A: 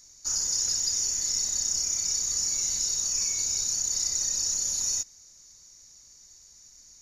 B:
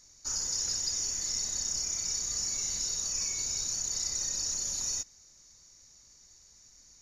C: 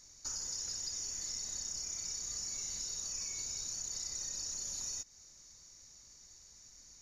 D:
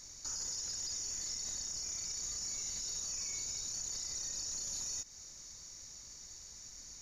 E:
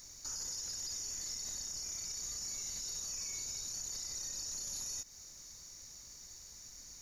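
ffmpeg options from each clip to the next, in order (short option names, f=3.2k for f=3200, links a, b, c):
-af "highshelf=f=5.9k:g=-9.5"
-af "acompressor=threshold=-40dB:ratio=3"
-af "alimiter=level_in=14dB:limit=-24dB:level=0:latency=1:release=46,volume=-14dB,volume=6.5dB"
-af "aexciter=amount=2.9:drive=6:freq=9.3k,volume=-1dB"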